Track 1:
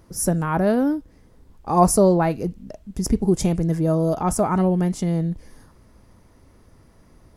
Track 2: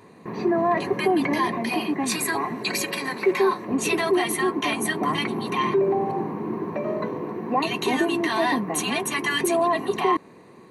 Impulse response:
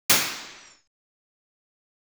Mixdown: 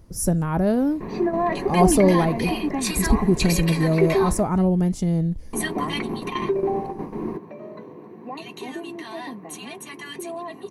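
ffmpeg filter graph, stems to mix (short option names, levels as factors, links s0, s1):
-filter_complex "[0:a]lowshelf=f=110:g=9.5,volume=0.794,asplit=2[s0][s1];[1:a]adelay=750,volume=1.06,asplit=3[s2][s3][s4];[s2]atrim=end=4.43,asetpts=PTS-STARTPTS,afade=t=out:st=4.426:d=0.004:c=hsin[s5];[s3]atrim=start=4.43:end=5.53,asetpts=PTS-STARTPTS,volume=0[s6];[s4]atrim=start=5.53,asetpts=PTS-STARTPTS,afade=t=in:d=0.004:c=hsin[s7];[s5][s6][s7]concat=n=3:v=0:a=1[s8];[s1]apad=whole_len=505336[s9];[s8][s9]sidechaingate=range=0.282:threshold=0.00447:ratio=16:detection=peak[s10];[s0][s10]amix=inputs=2:normalize=0,equalizer=f=1400:t=o:w=1.4:g=-4"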